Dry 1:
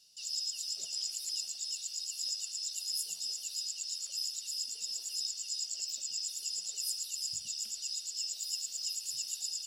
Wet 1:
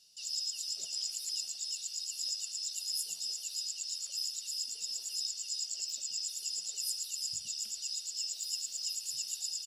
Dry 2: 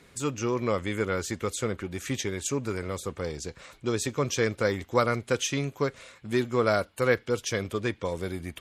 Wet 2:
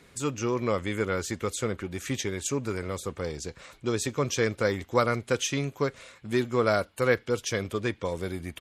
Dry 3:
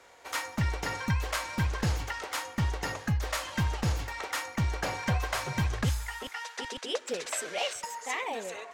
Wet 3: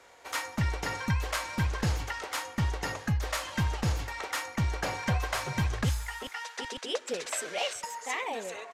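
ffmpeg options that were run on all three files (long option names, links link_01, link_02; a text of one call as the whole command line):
ffmpeg -i in.wav -af "aresample=32000,aresample=44100" out.wav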